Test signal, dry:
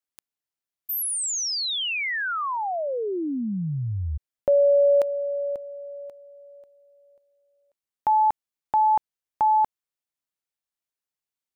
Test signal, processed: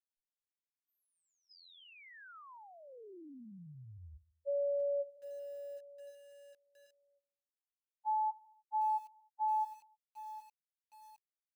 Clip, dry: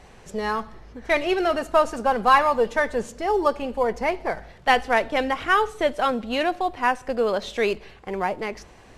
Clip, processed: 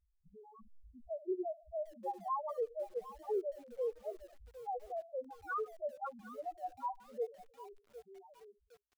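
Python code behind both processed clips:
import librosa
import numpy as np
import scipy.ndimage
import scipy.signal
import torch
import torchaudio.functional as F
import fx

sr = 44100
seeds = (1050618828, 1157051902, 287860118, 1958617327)

p1 = fx.fade_out_tail(x, sr, length_s=2.12)
p2 = fx.air_absorb(p1, sr, metres=380.0)
p3 = 10.0 ** (-22.0 / 20.0) * np.tanh(p2 / 10.0 ** (-22.0 / 20.0))
p4 = p2 + (p3 * 10.0 ** (-7.5 / 20.0))
p5 = fx.level_steps(p4, sr, step_db=21)
p6 = fx.quant_dither(p5, sr, seeds[0], bits=12, dither='none')
p7 = fx.echo_feedback(p6, sr, ms=76, feedback_pct=56, wet_db=-20)
p8 = fx.spec_topn(p7, sr, count=1)
p9 = fx.peak_eq(p8, sr, hz=690.0, db=-4.5, octaves=0.63)
p10 = fx.echo_crushed(p9, sr, ms=757, feedback_pct=35, bits=8, wet_db=-14.0)
y = p10 * 10.0 ** (-5.0 / 20.0)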